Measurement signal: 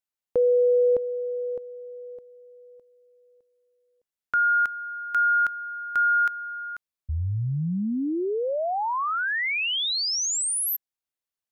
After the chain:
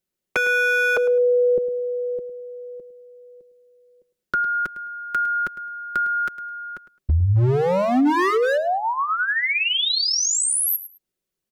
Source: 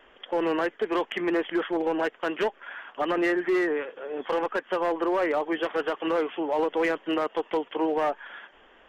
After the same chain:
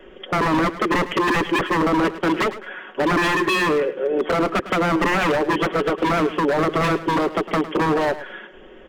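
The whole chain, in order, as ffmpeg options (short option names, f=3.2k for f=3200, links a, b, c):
-filter_complex "[0:a]lowshelf=f=580:t=q:w=1.5:g=9.5,aecho=1:1:5.4:0.53,aeval=exprs='0.126*(abs(mod(val(0)/0.126+3,4)-2)-1)':c=same,acrossover=split=350[a][b];[b]acompressor=threshold=-28dB:ratio=6:attack=57:release=40:knee=2.83:detection=peak[c];[a][c]amix=inputs=2:normalize=0,asplit=2[d][e];[e]aecho=0:1:106|212:0.188|0.0358[f];[d][f]amix=inputs=2:normalize=0,volume=5dB"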